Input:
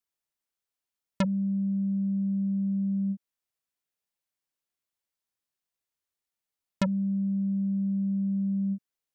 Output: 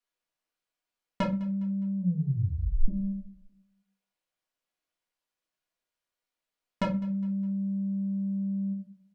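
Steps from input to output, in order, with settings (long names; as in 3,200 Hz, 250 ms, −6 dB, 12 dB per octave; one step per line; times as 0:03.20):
0:01.98: tape stop 0.90 s
0:07.23–0:08.39: high-shelf EQ 3,900 Hz +7 dB
mid-hump overdrive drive 5 dB, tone 2,800 Hz, clips at −16 dBFS
repeating echo 205 ms, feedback 43%, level −20.5 dB
convolution reverb RT60 0.30 s, pre-delay 4 ms, DRR −1.5 dB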